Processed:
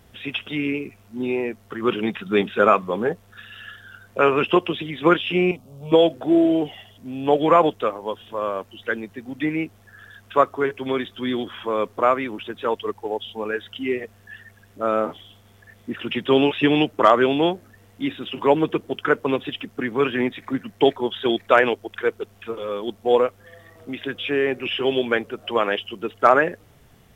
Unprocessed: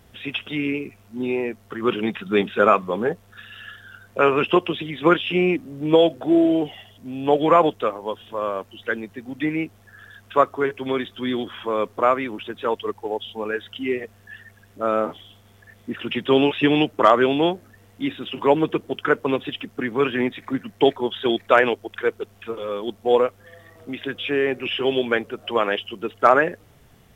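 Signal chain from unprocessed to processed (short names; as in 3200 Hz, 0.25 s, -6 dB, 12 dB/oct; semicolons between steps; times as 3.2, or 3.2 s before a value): 5.51–5.92 fixed phaser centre 750 Hz, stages 4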